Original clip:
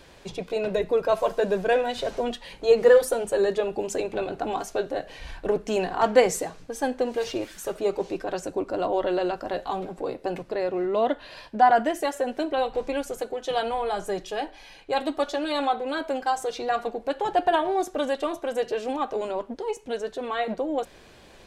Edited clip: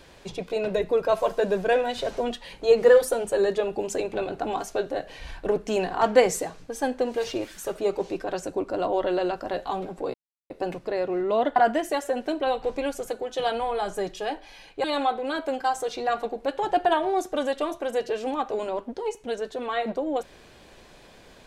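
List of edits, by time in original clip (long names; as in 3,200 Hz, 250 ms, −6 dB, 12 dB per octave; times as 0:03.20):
0:10.14: splice in silence 0.36 s
0:11.20–0:11.67: remove
0:14.95–0:15.46: remove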